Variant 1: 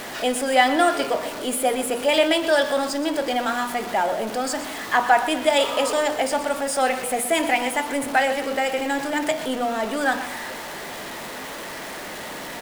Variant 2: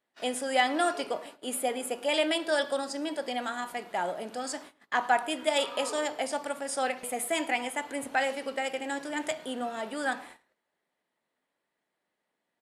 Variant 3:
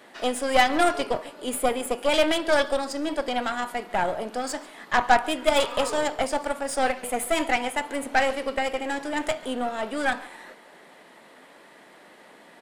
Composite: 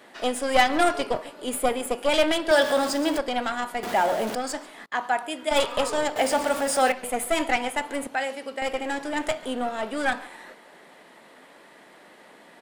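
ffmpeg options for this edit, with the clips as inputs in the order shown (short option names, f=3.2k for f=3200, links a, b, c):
-filter_complex "[0:a]asplit=3[a][b][c];[1:a]asplit=2[d][e];[2:a]asplit=6[f][g][h][i][j][k];[f]atrim=end=2.512[l];[a]atrim=start=2.508:end=3.182[m];[g]atrim=start=3.178:end=3.832[n];[b]atrim=start=3.828:end=4.352[o];[h]atrim=start=4.348:end=4.862[p];[d]atrim=start=4.858:end=5.512[q];[i]atrim=start=5.508:end=6.162[r];[c]atrim=start=6.158:end=6.922[s];[j]atrim=start=6.918:end=8.072[t];[e]atrim=start=8.068:end=8.622[u];[k]atrim=start=8.618[v];[l][m]acrossfade=d=0.004:c1=hsin:c2=hsin[w];[w][n]acrossfade=d=0.004:c1=hsin:c2=hsin[x];[x][o]acrossfade=d=0.004:c1=hsin:c2=hsin[y];[y][p]acrossfade=d=0.004:c1=hsin:c2=hsin[z];[z][q]acrossfade=d=0.004:c1=hsin:c2=hsin[aa];[aa][r]acrossfade=d=0.004:c1=hsin:c2=hsin[ab];[ab][s]acrossfade=d=0.004:c1=hsin:c2=hsin[ac];[ac][t]acrossfade=d=0.004:c1=hsin:c2=hsin[ad];[ad][u]acrossfade=d=0.004:c1=hsin:c2=hsin[ae];[ae][v]acrossfade=d=0.004:c1=hsin:c2=hsin"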